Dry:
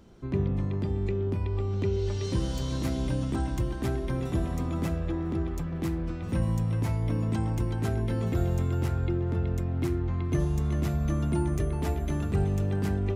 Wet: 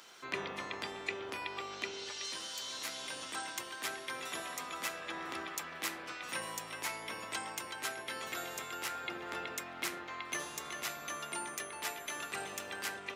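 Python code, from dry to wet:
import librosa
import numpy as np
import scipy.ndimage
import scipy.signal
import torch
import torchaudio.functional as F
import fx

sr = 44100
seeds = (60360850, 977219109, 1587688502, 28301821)

y = fx.octave_divider(x, sr, octaves=1, level_db=1.0)
y = scipy.signal.sosfilt(scipy.signal.butter(2, 1500.0, 'highpass', fs=sr, output='sos'), y)
y = fx.rider(y, sr, range_db=10, speed_s=0.5)
y = y * librosa.db_to_amplitude(7.0)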